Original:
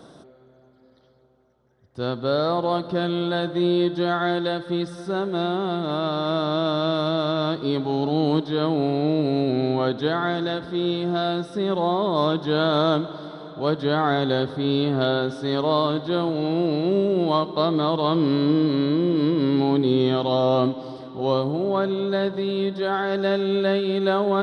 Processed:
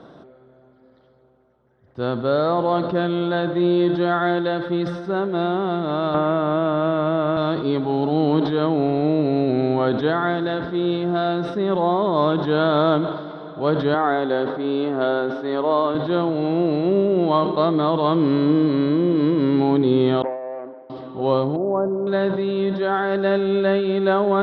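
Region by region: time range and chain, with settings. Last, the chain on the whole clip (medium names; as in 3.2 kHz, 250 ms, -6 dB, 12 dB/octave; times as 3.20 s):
6.14–7.37 s: low-pass 2.9 kHz 24 dB/octave + three bands compressed up and down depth 100%
13.94–15.95 s: high-pass 280 Hz + treble shelf 3.9 kHz -10.5 dB
20.22–20.90 s: median filter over 41 samples + ladder band-pass 730 Hz, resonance 25% + distance through air 130 m
21.56–22.07 s: low-pass 1 kHz 24 dB/octave + bass shelf 130 Hz -8.5 dB
whole clip: low-pass 2.7 kHz 12 dB/octave; bass shelf 170 Hz -3 dB; decay stretcher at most 54 dB/s; trim +3 dB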